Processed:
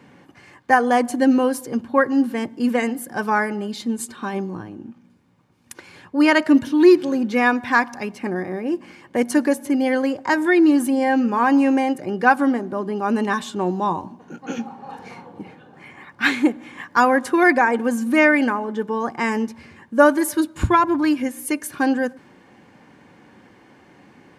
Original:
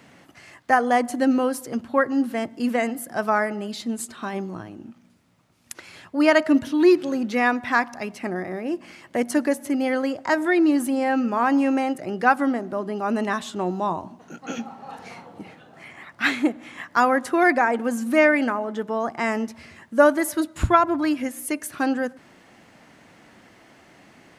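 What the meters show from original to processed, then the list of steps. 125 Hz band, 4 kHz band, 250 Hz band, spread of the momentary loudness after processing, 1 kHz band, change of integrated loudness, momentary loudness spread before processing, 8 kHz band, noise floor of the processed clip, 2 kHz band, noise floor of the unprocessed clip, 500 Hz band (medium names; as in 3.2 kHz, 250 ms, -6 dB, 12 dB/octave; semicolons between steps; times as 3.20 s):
+3.0 dB, +2.5 dB, +4.0 dB, 13 LU, +2.5 dB, +3.0 dB, 16 LU, +2.0 dB, -52 dBFS, +3.5 dB, -54 dBFS, +2.0 dB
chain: comb of notches 660 Hz; tape noise reduction on one side only decoder only; trim +4 dB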